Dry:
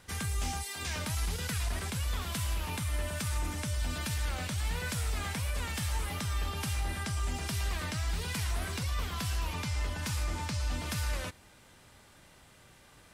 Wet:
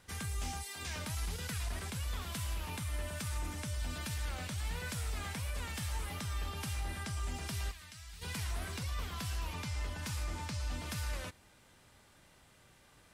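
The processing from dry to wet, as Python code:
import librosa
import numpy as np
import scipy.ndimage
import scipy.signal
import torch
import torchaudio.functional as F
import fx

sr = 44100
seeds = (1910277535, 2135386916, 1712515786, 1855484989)

y = fx.tone_stack(x, sr, knobs='5-5-5', at=(7.7, 8.21), fade=0.02)
y = y * 10.0 ** (-5.0 / 20.0)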